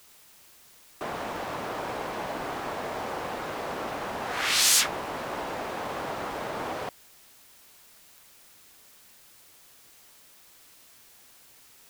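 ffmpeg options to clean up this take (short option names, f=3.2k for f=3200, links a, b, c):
-af "adeclick=t=4,afftdn=nr=27:nf=-55"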